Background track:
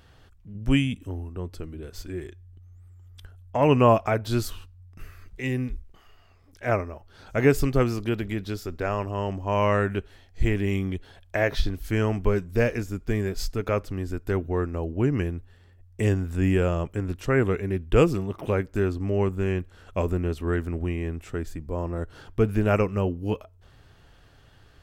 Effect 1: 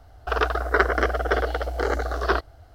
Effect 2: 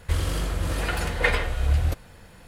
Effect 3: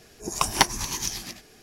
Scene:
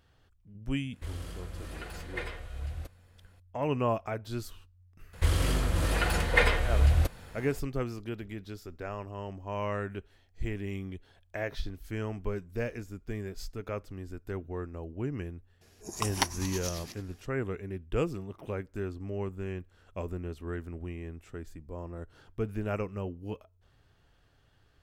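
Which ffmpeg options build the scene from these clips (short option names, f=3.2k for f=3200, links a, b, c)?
-filter_complex "[2:a]asplit=2[a][b];[0:a]volume=-11dB[c];[a]bandreject=f=900:w=17,atrim=end=2.47,asetpts=PTS-STARTPTS,volume=-15.5dB,afade=t=in:d=0.004:c=hsin,afade=t=out:st=2.466:d=0.004:c=hsin,adelay=930[d];[b]atrim=end=2.47,asetpts=PTS-STARTPTS,volume=-1dB,afade=t=in:d=0.004:c=hsin,afade=t=out:st=2.466:d=0.004:c=hsin,adelay=226233S[e];[3:a]atrim=end=1.62,asetpts=PTS-STARTPTS,volume=-9dB,afade=t=in:d=0.004:c=hsin,afade=t=out:st=1.616:d=0.004:c=hsin,adelay=15610[f];[c][d][e][f]amix=inputs=4:normalize=0"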